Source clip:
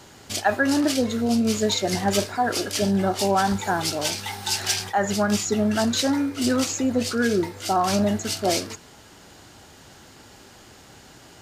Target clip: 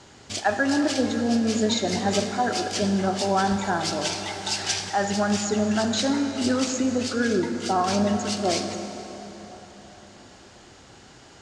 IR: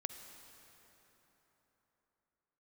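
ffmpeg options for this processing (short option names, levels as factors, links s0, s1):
-filter_complex "[0:a]lowpass=f=8100:w=0.5412,lowpass=f=8100:w=1.3066[s0];[1:a]atrim=start_sample=2205,asetrate=41013,aresample=44100[s1];[s0][s1]afir=irnorm=-1:irlink=0"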